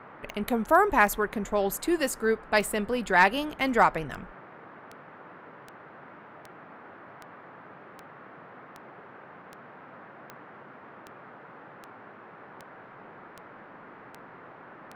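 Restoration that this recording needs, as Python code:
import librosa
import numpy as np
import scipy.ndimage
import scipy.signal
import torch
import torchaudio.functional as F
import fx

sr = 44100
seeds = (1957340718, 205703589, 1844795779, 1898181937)

y = fx.fix_declip(x, sr, threshold_db=-8.5)
y = fx.fix_declick_ar(y, sr, threshold=10.0)
y = fx.noise_reduce(y, sr, print_start_s=6.19, print_end_s=6.69, reduce_db=25.0)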